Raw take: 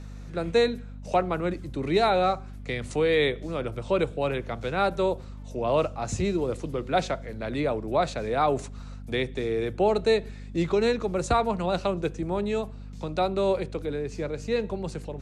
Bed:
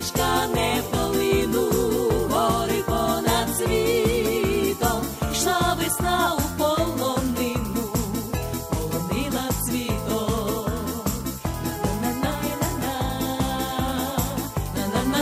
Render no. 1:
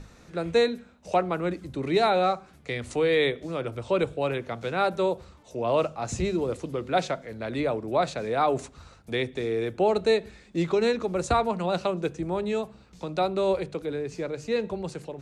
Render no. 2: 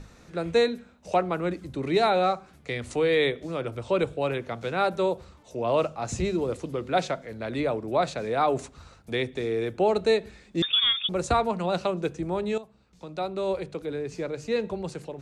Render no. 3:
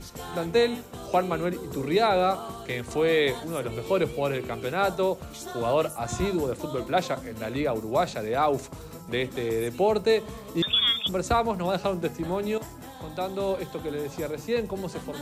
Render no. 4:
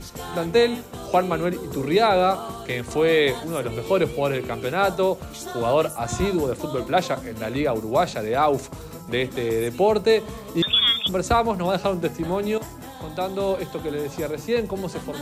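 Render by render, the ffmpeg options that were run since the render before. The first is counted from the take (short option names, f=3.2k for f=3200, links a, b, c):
-af "bandreject=f=50:t=h:w=6,bandreject=f=100:t=h:w=6,bandreject=f=150:t=h:w=6,bandreject=f=200:t=h:w=6,bandreject=f=250:t=h:w=6"
-filter_complex "[0:a]asettb=1/sr,asplit=3[a][b][c];[a]atrim=end=10.624[d];[b]atrim=start=10.62:end=11.09,asetpts=PTS-STARTPTS,afade=t=in:d=0.004:c=qsin,afade=t=out:st=0.466:d=0.004:c=qsin,lowpass=f=3.2k:t=q:w=0.5098,lowpass=f=3.2k:t=q:w=0.6013,lowpass=f=3.2k:t=q:w=0.9,lowpass=f=3.2k:t=q:w=2.563,afreqshift=-3800[e];[c]atrim=start=11.086[f];[d][e]acrossfade=d=0.004:c1=hsin:c2=qsin[g];[g][f]acrossfade=d=0.004:c1=qsin:c2=hsin,asplit=2[h][i];[h]atrim=end=12.58,asetpts=PTS-STARTPTS,afade=t=out:st=12.576:d=0.004:c=hsin:silence=0.223872[j];[i]atrim=start=12.58,asetpts=PTS-STARTPTS,afade=t=in:d=1.56:silence=0.223872[k];[j][k]concat=n=2:v=0:a=1"
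-filter_complex "[1:a]volume=-16.5dB[a];[0:a][a]amix=inputs=2:normalize=0"
-af "volume=4dB"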